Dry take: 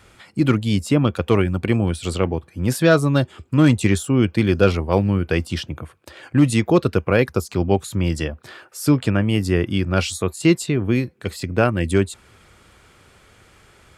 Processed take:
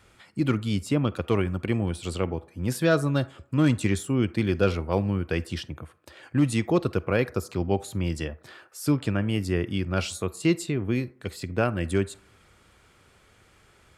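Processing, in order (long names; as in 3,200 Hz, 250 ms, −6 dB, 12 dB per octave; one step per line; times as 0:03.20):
on a send: high-pass filter 420 Hz 6 dB per octave + convolution reverb RT60 0.60 s, pre-delay 38 ms, DRR 18 dB
on the sum: level −7 dB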